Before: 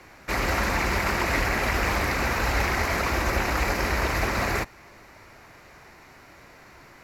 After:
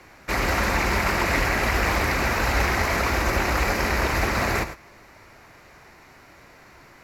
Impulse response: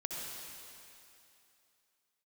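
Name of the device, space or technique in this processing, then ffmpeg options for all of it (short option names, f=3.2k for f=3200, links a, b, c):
keyed gated reverb: -filter_complex "[0:a]asplit=3[a][b][c];[1:a]atrim=start_sample=2205[d];[b][d]afir=irnorm=-1:irlink=0[e];[c]apad=whole_len=310408[f];[e][f]sidechaingate=range=-33dB:threshold=-38dB:ratio=16:detection=peak,volume=-9dB[g];[a][g]amix=inputs=2:normalize=0"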